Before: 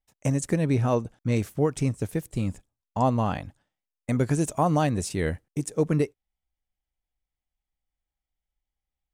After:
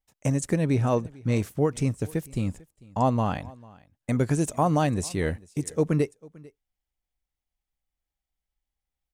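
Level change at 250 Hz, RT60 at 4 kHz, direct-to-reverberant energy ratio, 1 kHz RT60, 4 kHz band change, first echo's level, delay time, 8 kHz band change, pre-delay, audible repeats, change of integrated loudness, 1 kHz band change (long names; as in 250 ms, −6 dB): 0.0 dB, no reverb audible, no reverb audible, no reverb audible, 0.0 dB, −23.5 dB, 446 ms, 0.0 dB, no reverb audible, 1, 0.0 dB, 0.0 dB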